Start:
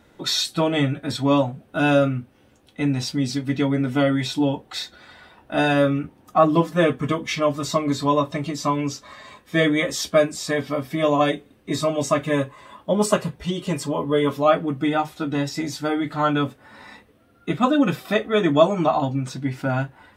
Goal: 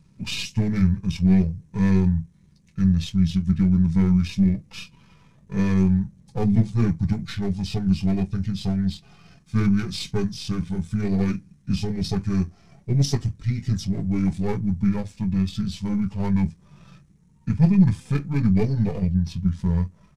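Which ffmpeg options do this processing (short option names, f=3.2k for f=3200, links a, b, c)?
-af "aeval=exprs='if(lt(val(0),0),0.447*val(0),val(0))':c=same,equalizer=f=125:t=o:w=1:g=3,equalizer=f=250:t=o:w=1:g=10,equalizer=f=500:t=o:w=1:g=-8,equalizer=f=1k:t=o:w=1:g=-12,equalizer=f=2k:t=o:w=1:g=-8,equalizer=f=4k:t=o:w=1:g=-5,equalizer=f=8k:t=o:w=1:g=3,asetrate=29433,aresample=44100,atempo=1.49831"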